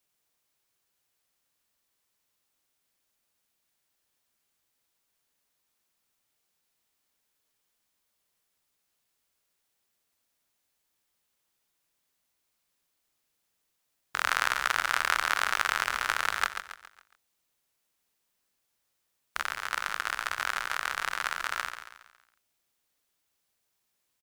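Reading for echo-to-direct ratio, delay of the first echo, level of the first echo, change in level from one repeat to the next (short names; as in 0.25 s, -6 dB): -8.0 dB, 0.138 s, -9.0 dB, -7.5 dB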